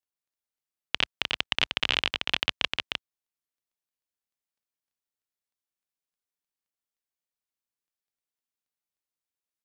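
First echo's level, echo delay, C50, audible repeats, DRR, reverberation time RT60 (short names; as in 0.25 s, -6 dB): -4.0 dB, 0.306 s, none, 1, none, none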